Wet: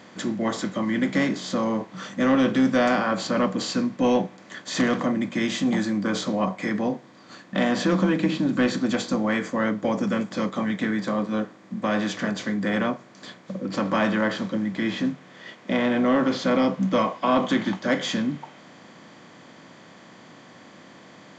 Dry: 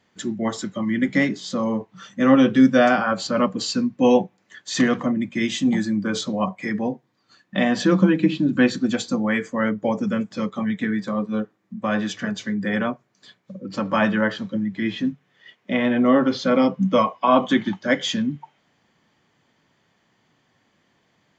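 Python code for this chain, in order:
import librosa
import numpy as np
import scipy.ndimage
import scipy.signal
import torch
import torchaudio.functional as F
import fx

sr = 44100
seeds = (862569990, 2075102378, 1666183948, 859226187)

y = fx.bin_compress(x, sr, power=0.6)
y = 10.0 ** (-4.5 / 20.0) * np.tanh(y / 10.0 ** (-4.5 / 20.0))
y = y * 10.0 ** (-6.0 / 20.0)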